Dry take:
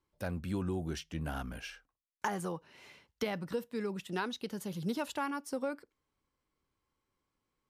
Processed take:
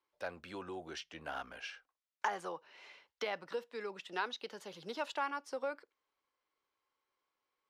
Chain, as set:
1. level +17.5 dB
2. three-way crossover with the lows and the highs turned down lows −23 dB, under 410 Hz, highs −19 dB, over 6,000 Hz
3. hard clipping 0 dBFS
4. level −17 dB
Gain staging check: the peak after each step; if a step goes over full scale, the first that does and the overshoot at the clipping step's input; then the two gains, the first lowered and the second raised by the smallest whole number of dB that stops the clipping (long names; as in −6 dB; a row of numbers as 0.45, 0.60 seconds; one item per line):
−2.5, −3.0, −3.0, −20.0 dBFS
no step passes full scale